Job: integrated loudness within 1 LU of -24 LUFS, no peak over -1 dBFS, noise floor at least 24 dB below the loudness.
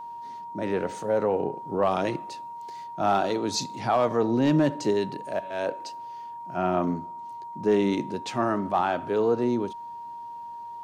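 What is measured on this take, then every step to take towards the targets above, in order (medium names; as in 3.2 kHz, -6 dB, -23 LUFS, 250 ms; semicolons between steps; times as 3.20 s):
steady tone 940 Hz; tone level -36 dBFS; loudness -26.5 LUFS; peak level -13.0 dBFS; loudness target -24.0 LUFS
-> band-stop 940 Hz, Q 30; trim +2.5 dB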